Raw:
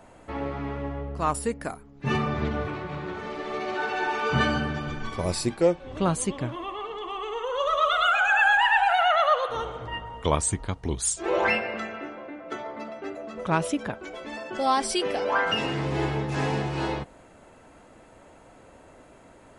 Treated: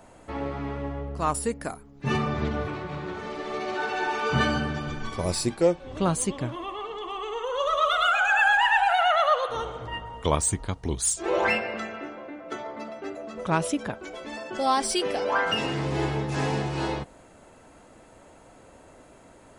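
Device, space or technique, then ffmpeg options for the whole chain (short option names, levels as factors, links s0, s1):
exciter from parts: -filter_complex "[0:a]asplit=2[s0][s1];[s1]highpass=3400,asoftclip=type=tanh:threshold=0.0266,volume=0.562[s2];[s0][s2]amix=inputs=2:normalize=0"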